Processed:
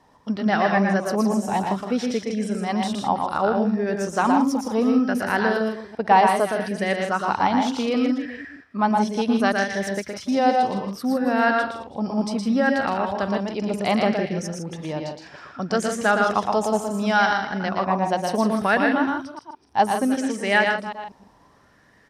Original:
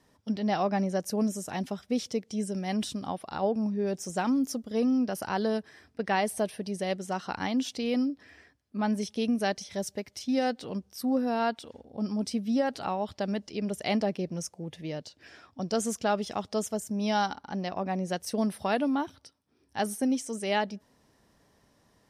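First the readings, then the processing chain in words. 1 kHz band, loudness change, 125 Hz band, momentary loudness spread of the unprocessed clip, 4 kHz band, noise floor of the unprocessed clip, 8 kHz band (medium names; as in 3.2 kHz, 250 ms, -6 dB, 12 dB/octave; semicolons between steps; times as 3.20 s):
+11.5 dB, +8.5 dB, +6.5 dB, 9 LU, +6.0 dB, -67 dBFS, +2.5 dB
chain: chunks repeated in reverse 192 ms, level -13 dB; treble shelf 7.2 kHz -8.5 dB; on a send: loudspeakers at several distances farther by 40 m -4 dB, 54 m -8 dB; on the sum: sweeping bell 0.66 Hz 860–1800 Hz +12 dB; trim +4.5 dB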